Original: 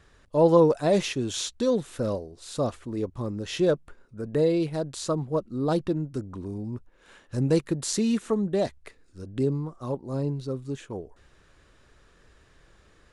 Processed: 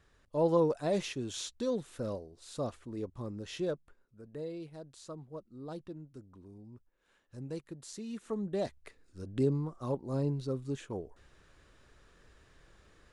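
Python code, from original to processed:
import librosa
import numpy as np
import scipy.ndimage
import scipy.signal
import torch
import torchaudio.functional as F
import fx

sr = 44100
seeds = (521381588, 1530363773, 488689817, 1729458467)

y = fx.gain(x, sr, db=fx.line((3.42, -9.0), (4.27, -18.0), (8.06, -18.0), (8.36, -10.0), (9.25, -3.5)))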